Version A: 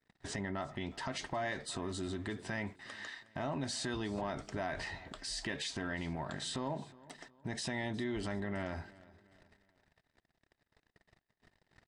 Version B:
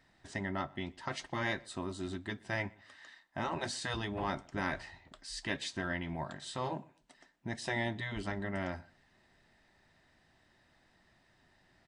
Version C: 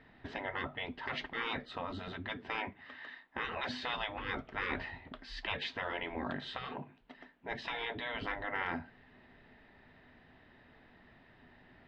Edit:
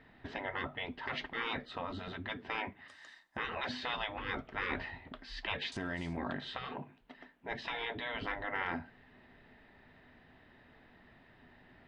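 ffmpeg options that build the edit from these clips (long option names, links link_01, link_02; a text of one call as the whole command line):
ffmpeg -i take0.wav -i take1.wav -i take2.wav -filter_complex "[2:a]asplit=3[link_01][link_02][link_03];[link_01]atrim=end=2.882[link_04];[1:a]atrim=start=2.878:end=3.372[link_05];[link_02]atrim=start=3.368:end=5.722[link_06];[0:a]atrim=start=5.718:end=6.172[link_07];[link_03]atrim=start=6.168[link_08];[link_04][link_05]acrossfade=duration=0.004:curve1=hsin:curve2=hsin[link_09];[link_09][link_06]acrossfade=duration=0.004:curve1=hsin:curve2=hsin[link_10];[link_10][link_07]acrossfade=duration=0.004:curve1=hsin:curve2=hsin[link_11];[link_11][link_08]acrossfade=duration=0.004:curve1=hsin:curve2=hsin" out.wav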